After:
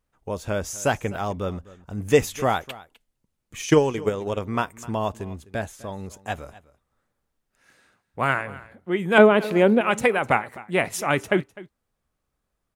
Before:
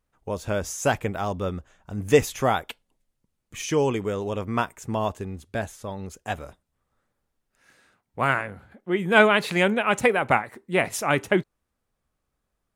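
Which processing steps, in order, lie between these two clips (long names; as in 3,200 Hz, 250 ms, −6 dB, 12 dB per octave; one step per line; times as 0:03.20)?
0:03.67–0:04.39: transient designer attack +11 dB, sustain −8 dB
0:09.18–0:09.81: graphic EQ with 10 bands 125 Hz −9 dB, 250 Hz +10 dB, 500 Hz +5 dB, 2,000 Hz −5 dB, 4,000 Hz −5 dB, 8,000 Hz −9 dB
single-tap delay 254 ms −19.5 dB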